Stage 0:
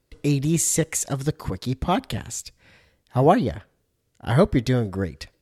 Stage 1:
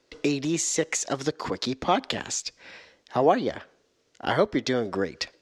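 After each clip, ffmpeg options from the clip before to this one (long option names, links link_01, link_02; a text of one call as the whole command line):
ffmpeg -i in.wav -filter_complex "[0:a]equalizer=frequency=6200:width_type=o:width=0.78:gain=7,acompressor=threshold=-29dB:ratio=2.5,acrossover=split=250 5900:gain=0.1 1 0.0631[link_01][link_02][link_03];[link_01][link_02][link_03]amix=inputs=3:normalize=0,volume=8.5dB" out.wav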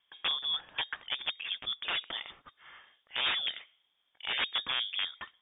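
ffmpeg -i in.wav -af "aeval=exprs='(mod(6.68*val(0)+1,2)-1)/6.68':channel_layout=same,lowpass=frequency=3100:width_type=q:width=0.5098,lowpass=frequency=3100:width_type=q:width=0.6013,lowpass=frequency=3100:width_type=q:width=0.9,lowpass=frequency=3100:width_type=q:width=2.563,afreqshift=-3700,volume=-6.5dB" out.wav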